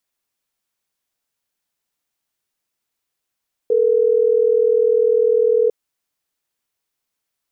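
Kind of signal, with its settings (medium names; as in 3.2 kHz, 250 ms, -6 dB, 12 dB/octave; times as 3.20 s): call progress tone ringback tone, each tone -15 dBFS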